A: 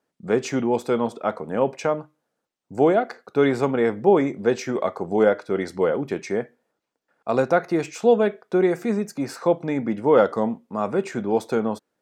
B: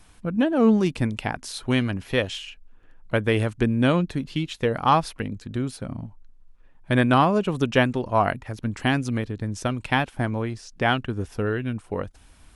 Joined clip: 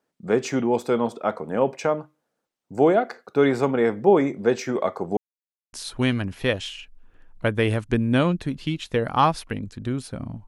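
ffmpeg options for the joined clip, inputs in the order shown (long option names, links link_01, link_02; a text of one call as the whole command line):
ffmpeg -i cue0.wav -i cue1.wav -filter_complex "[0:a]apad=whole_dur=10.47,atrim=end=10.47,asplit=2[link_01][link_02];[link_01]atrim=end=5.17,asetpts=PTS-STARTPTS,afade=type=out:start_time=5.166:duration=0.004:curve=hsin[link_03];[link_02]atrim=start=5.17:end=5.73,asetpts=PTS-STARTPTS,volume=0[link_04];[1:a]atrim=start=1.42:end=6.16,asetpts=PTS-STARTPTS,afade=type=in:duration=0.004:curve=hsin[link_05];[link_03][link_04][link_05]concat=n=3:v=0:a=1" out.wav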